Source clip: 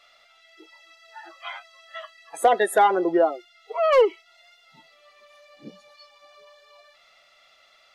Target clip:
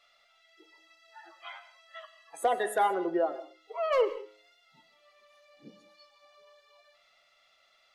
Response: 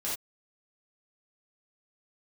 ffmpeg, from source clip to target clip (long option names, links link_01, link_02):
-filter_complex "[0:a]bandreject=frequency=105.6:width_type=h:width=4,bandreject=frequency=211.2:width_type=h:width=4,bandreject=frequency=316.8:width_type=h:width=4,bandreject=frequency=422.4:width_type=h:width=4,bandreject=frequency=528:width_type=h:width=4,bandreject=frequency=633.6:width_type=h:width=4,bandreject=frequency=739.2:width_type=h:width=4,bandreject=frequency=844.8:width_type=h:width=4,bandreject=frequency=950.4:width_type=h:width=4,bandreject=frequency=1056:width_type=h:width=4,bandreject=frequency=1161.6:width_type=h:width=4,bandreject=frequency=1267.2:width_type=h:width=4,bandreject=frequency=1372.8:width_type=h:width=4,bandreject=frequency=1478.4:width_type=h:width=4,bandreject=frequency=1584:width_type=h:width=4,bandreject=frequency=1689.6:width_type=h:width=4,bandreject=frequency=1795.2:width_type=h:width=4,bandreject=frequency=1900.8:width_type=h:width=4,bandreject=frequency=2006.4:width_type=h:width=4,bandreject=frequency=2112:width_type=h:width=4,bandreject=frequency=2217.6:width_type=h:width=4,bandreject=frequency=2323.2:width_type=h:width=4,bandreject=frequency=2428.8:width_type=h:width=4,bandreject=frequency=2534.4:width_type=h:width=4,bandreject=frequency=2640:width_type=h:width=4,bandreject=frequency=2745.6:width_type=h:width=4,bandreject=frequency=2851.2:width_type=h:width=4,asplit=2[link_01][link_02];[1:a]atrim=start_sample=2205,adelay=98[link_03];[link_02][link_03]afir=irnorm=-1:irlink=0,volume=-19dB[link_04];[link_01][link_04]amix=inputs=2:normalize=0,volume=-8.5dB"